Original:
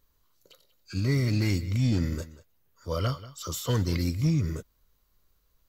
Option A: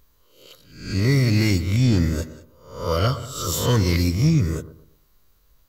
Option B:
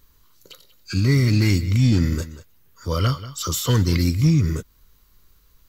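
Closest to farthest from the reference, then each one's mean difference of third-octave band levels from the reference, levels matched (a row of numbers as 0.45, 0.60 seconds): B, A; 1.5, 4.0 decibels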